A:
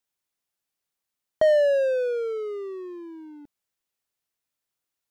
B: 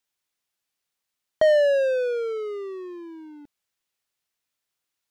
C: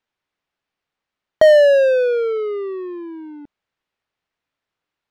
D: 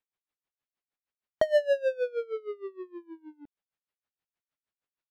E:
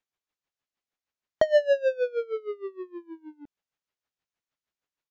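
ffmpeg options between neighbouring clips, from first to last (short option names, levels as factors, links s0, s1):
-af "equalizer=f=3100:w=0.4:g=4.5"
-af "adynamicsmooth=sensitivity=5.5:basefreq=2800,volume=2.51"
-af "aeval=exprs='val(0)*pow(10,-23*(0.5-0.5*cos(2*PI*6.4*n/s))/20)':c=same,volume=0.376"
-af "aresample=16000,aresample=44100,volume=1.41"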